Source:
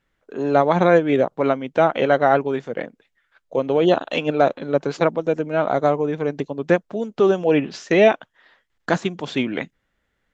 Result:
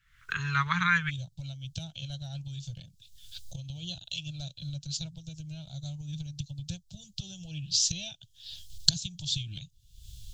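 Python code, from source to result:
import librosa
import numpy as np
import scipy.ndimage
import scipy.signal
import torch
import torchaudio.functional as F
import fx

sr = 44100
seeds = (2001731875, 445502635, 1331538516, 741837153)

y = fx.recorder_agc(x, sr, target_db=-11.5, rise_db_per_s=62.0, max_gain_db=30)
y = fx.cheby2_bandstop(y, sr, low_hz=230.0, high_hz=fx.steps((0.0, 780.0), (1.09, 2100.0)), order=4, stop_db=40)
y = y * 10.0 ** (1.5 / 20.0)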